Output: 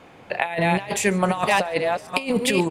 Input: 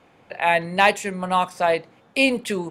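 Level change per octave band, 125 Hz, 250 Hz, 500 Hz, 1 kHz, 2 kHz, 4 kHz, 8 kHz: +6.5, +2.5, 0.0, -2.5, -2.0, -1.0, +6.5 dB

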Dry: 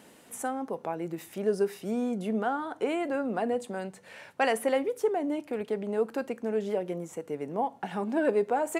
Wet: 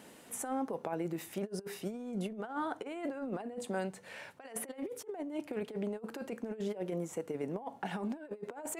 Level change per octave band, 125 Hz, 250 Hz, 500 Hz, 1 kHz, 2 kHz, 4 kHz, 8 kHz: -2.0, -6.5, -10.5, -10.0, -9.5, -7.0, -0.5 dB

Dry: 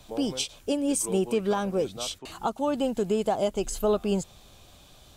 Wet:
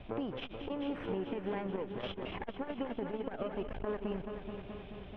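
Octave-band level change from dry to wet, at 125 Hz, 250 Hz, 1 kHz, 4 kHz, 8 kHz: -8.5 dB, -10.0 dB, -11.5 dB, -13.5 dB, under -40 dB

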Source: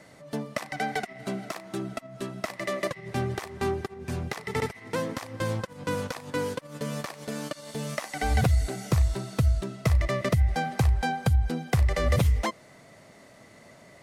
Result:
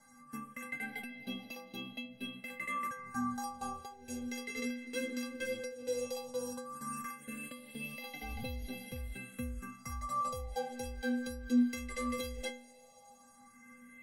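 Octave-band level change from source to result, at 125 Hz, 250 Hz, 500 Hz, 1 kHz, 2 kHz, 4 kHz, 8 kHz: -23.0, -4.0, -10.0, -8.0, -7.5, -8.0, -6.5 dB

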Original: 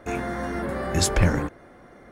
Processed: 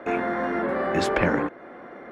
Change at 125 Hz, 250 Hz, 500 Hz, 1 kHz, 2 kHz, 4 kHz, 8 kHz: -9.0, +1.5, +4.0, +4.5, +3.5, -6.0, -15.0 dB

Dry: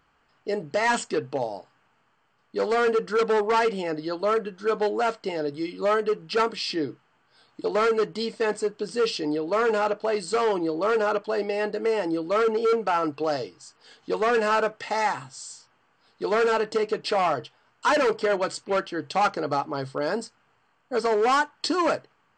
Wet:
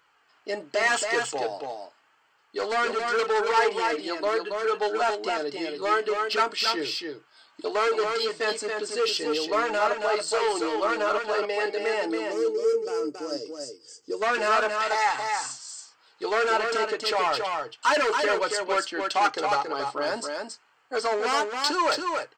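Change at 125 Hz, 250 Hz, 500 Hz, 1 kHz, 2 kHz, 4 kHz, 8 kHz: under -10 dB, -4.5 dB, -2.0 dB, +0.5 dB, +3.0 dB, +4.5 dB, +5.0 dB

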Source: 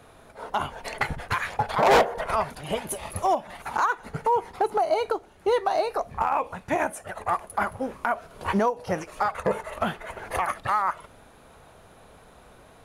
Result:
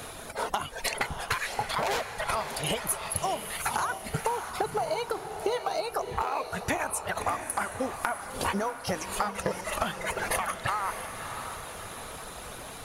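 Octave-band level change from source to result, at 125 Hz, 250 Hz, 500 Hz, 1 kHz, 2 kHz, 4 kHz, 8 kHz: -2.0, -4.5, -6.5, -5.5, -2.0, +2.5, +7.0 dB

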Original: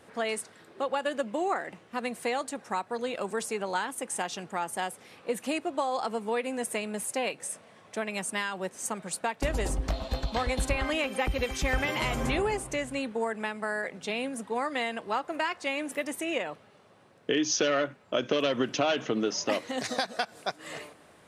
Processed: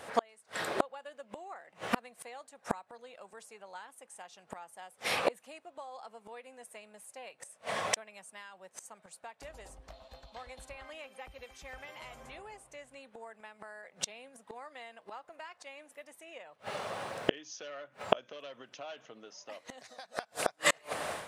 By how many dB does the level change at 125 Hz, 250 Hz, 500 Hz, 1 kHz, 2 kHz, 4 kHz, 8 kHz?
-15.5, -13.5, -9.5, -7.5, -7.5, -7.0, -7.5 dB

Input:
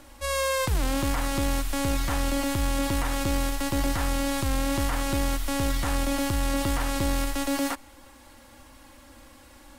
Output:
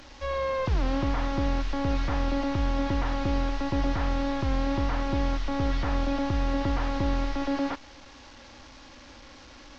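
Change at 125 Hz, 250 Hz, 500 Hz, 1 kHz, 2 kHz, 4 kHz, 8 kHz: 0.0, -0.5, -0.5, -1.0, -4.5, -6.5, -17.5 dB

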